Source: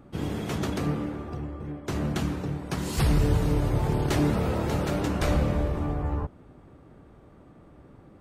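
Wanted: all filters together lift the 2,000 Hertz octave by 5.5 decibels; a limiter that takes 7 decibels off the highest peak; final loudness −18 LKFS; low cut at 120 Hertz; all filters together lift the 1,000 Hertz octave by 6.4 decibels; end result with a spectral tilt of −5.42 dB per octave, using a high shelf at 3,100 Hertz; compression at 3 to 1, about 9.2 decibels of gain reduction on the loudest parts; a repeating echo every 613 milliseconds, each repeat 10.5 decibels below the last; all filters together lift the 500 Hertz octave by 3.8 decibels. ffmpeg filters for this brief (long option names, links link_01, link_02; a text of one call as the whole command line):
ffmpeg -i in.wav -af "highpass=120,equalizer=frequency=500:width_type=o:gain=3,equalizer=frequency=1000:width_type=o:gain=6,equalizer=frequency=2000:width_type=o:gain=3.5,highshelf=frequency=3100:gain=4,acompressor=threshold=-32dB:ratio=3,alimiter=level_in=1dB:limit=-24dB:level=0:latency=1,volume=-1dB,aecho=1:1:613|1226|1839:0.299|0.0896|0.0269,volume=17dB" out.wav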